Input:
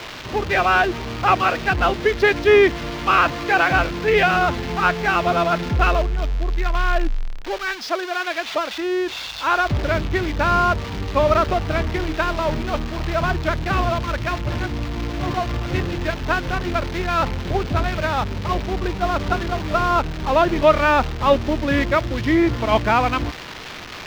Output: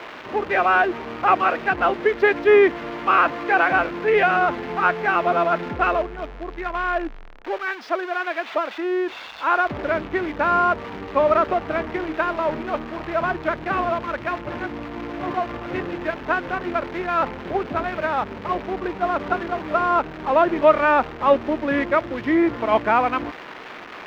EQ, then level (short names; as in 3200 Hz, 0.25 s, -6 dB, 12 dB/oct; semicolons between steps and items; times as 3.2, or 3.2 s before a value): three-band isolator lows -18 dB, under 210 Hz, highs -16 dB, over 2500 Hz; 0.0 dB